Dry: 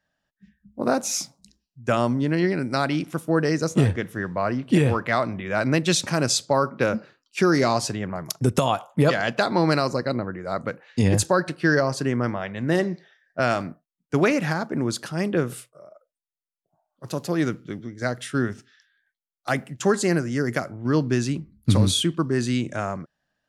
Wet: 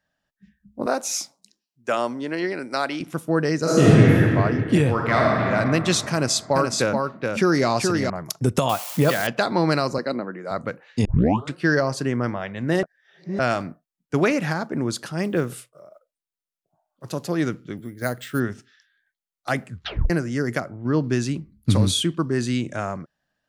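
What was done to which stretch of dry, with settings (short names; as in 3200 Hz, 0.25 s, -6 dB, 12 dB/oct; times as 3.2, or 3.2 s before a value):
0.86–3.01 HPF 360 Hz
3.6–4.19 reverb throw, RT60 2.7 s, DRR -8.5 dB
4.92–5.42 reverb throw, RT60 2.9 s, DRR -3 dB
6.13–8.1 echo 0.425 s -4 dB
8.69–9.27 switching spikes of -20.5 dBFS
9.98–10.51 HPF 180 Hz 24 dB/oct
11.05 tape start 0.50 s
12.83–13.39 reverse
15.22–17.07 block floating point 7-bit
17.77–18.4 careless resampling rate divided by 4×, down filtered, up hold
19.64 tape stop 0.46 s
20.6–21.04 high shelf 3000 Hz -10 dB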